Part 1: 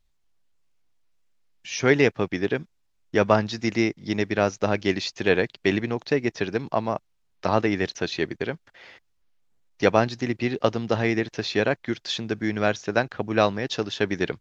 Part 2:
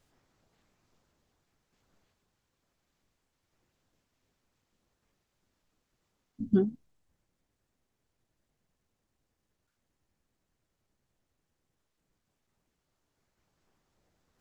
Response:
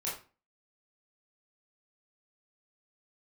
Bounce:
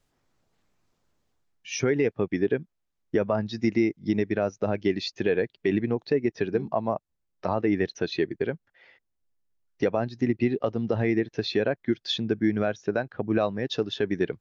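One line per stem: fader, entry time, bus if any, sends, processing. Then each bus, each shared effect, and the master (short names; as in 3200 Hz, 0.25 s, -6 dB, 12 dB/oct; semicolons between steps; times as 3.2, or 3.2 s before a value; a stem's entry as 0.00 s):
+3.0 dB, 0.00 s, no send, compressor 2:1, threshold -26 dBFS, peak gain reduction 8 dB; spectral expander 1.5:1
-2.0 dB, 0.00 s, no send, auto duck -10 dB, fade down 0.35 s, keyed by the first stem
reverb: off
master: limiter -13 dBFS, peak gain reduction 7 dB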